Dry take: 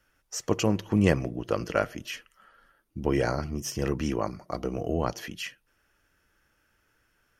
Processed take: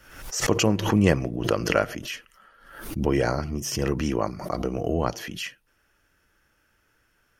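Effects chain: swell ahead of each attack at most 74 dB/s; trim +2.5 dB

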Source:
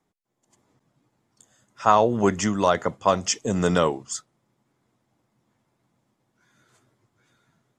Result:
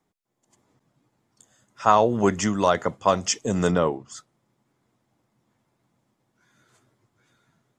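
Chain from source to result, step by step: 3.70–4.16 s: low-pass 1.1 kHz -> 2 kHz 6 dB/octave

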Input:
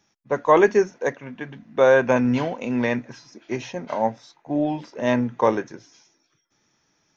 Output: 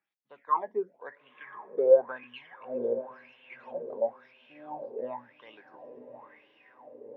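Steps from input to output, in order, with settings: band-stop 6 kHz, Q 6.2; in parallel at +2.5 dB: compression, threshold -25 dBFS, peak gain reduction 14 dB; on the sum: phase shifter stages 12, 1.1 Hz, lowest notch 420–2700 Hz; wow and flutter 25 cents; 2.23–4.02 s: touch-sensitive flanger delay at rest 5.1 ms, full sweep at -14.5 dBFS; on a send: echo that smears into a reverb 925 ms, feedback 56%, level -10 dB; on the sum: wah-wah 0.96 Hz 430–3000 Hz, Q 9.1; distance through air 160 m

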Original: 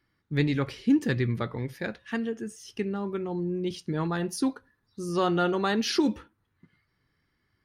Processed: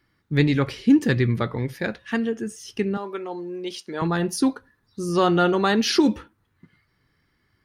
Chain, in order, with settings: 2.97–4.02 s: high-pass 480 Hz 12 dB/octave; trim +6 dB

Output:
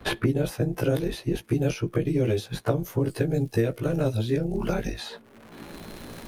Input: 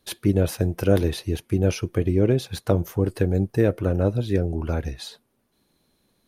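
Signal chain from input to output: short-time spectra conjugated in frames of 35 ms; crackle 200 per s -55 dBFS; three bands compressed up and down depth 100%

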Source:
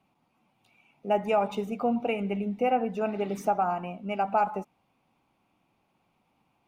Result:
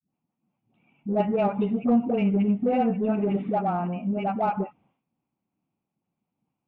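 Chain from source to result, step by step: expander -60 dBFS; steep low-pass 3.4 kHz 72 dB/octave; peaking EQ 180 Hz +13 dB 2.6 oct; phase dispersion highs, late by 94 ms, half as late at 510 Hz; in parallel at -8 dB: saturation -21 dBFS, distortion -9 dB; on the sum: trim -5.5 dB

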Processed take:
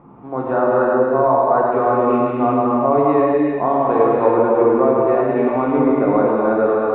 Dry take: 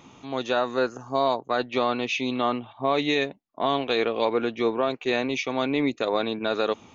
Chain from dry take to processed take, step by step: low-pass 1.3 kHz 24 dB/octave; thinning echo 106 ms, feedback 81%, high-pass 830 Hz, level -9.5 dB; gated-style reverb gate 420 ms flat, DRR -4.5 dB; trim +5 dB

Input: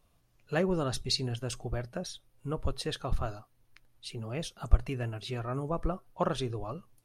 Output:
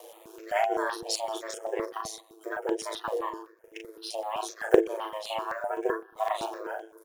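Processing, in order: block-companded coder 7-bit; formant-preserving pitch shift +11 st; upward compressor, threshold -31 dBFS; frequency shift +380 Hz; gate with hold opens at -47 dBFS; doubling 38 ms -4 dB; on a send at -22 dB: reverberation RT60 0.80 s, pre-delay 112 ms; on the sum: ring modulator 54 Hz; peaking EQ 4.5 kHz -6 dB 0.33 oct; stepped phaser 7.8 Hz 380–4300 Hz; trim +6.5 dB

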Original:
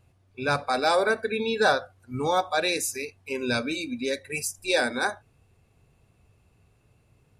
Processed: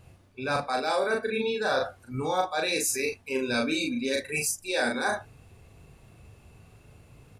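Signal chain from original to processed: reverse; compression 6:1, threshold -35 dBFS, peak gain reduction 17 dB; reverse; doubling 38 ms -3 dB; trim +8 dB

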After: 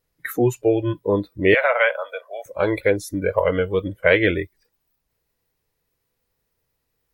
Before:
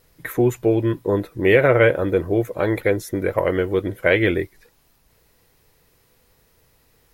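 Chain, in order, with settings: spectral noise reduction 18 dB; 1.54–2.46 s: steep high-pass 590 Hz 48 dB/octave; trim +1.5 dB

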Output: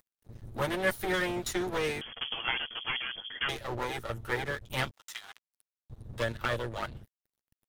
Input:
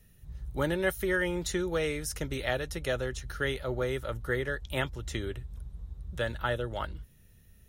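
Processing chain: comb filter that takes the minimum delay 8.8 ms; 4.91–5.90 s: high-pass 930 Hz 24 dB/octave; upward compressor, threshold -54 dBFS; crossover distortion -51.5 dBFS; 2.01–3.49 s: frequency inversion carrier 3.3 kHz; trim +1.5 dB

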